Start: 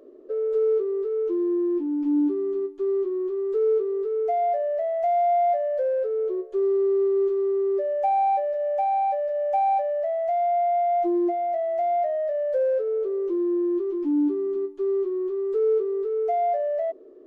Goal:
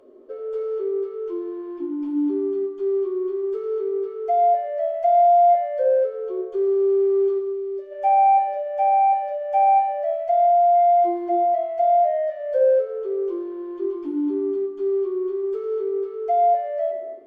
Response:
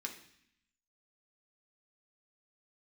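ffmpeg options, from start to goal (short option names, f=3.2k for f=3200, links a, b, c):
-filter_complex "[0:a]asplit=3[a][b][c];[a]afade=t=out:st=7.38:d=0.02[d];[b]equalizer=f=1k:w=0.42:g=-13.5,afade=t=in:st=7.38:d=0.02,afade=t=out:st=7.91:d=0.02[e];[c]afade=t=in:st=7.91:d=0.02[f];[d][e][f]amix=inputs=3:normalize=0[g];[1:a]atrim=start_sample=2205,asetrate=26019,aresample=44100[h];[g][h]afir=irnorm=-1:irlink=0"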